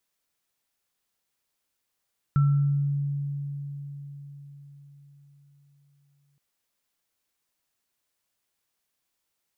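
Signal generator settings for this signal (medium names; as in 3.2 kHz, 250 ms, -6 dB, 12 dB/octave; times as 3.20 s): sine partials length 4.02 s, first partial 142 Hz, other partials 1.34 kHz, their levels -15 dB, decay 4.89 s, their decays 0.70 s, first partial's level -16.5 dB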